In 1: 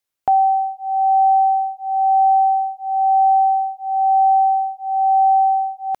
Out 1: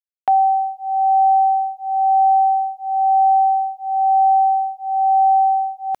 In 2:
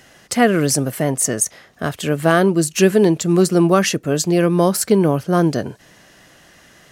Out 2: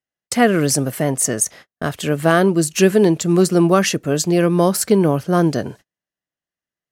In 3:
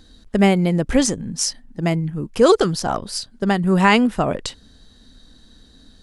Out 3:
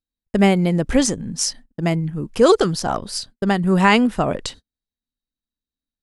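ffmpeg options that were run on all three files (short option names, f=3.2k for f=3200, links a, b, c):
-af "agate=range=-44dB:threshold=-37dB:ratio=16:detection=peak"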